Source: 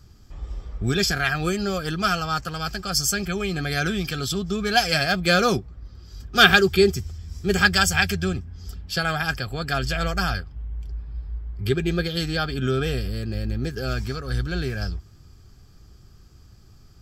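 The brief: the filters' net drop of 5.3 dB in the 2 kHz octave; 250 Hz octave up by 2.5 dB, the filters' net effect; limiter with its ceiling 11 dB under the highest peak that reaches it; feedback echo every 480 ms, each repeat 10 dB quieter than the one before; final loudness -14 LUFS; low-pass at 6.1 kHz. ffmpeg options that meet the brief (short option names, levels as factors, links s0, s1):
-af "lowpass=6100,equalizer=f=250:t=o:g=4,equalizer=f=2000:t=o:g=-7.5,alimiter=limit=0.211:level=0:latency=1,aecho=1:1:480|960|1440|1920:0.316|0.101|0.0324|0.0104,volume=3.76"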